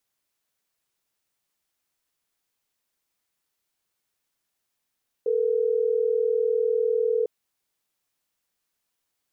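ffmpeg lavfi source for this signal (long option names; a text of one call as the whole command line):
ffmpeg -f lavfi -i "aevalsrc='0.0708*(sin(2*PI*440*t)+sin(2*PI*480*t))*clip(min(mod(t,6),2-mod(t,6))/0.005,0,1)':duration=3.12:sample_rate=44100" out.wav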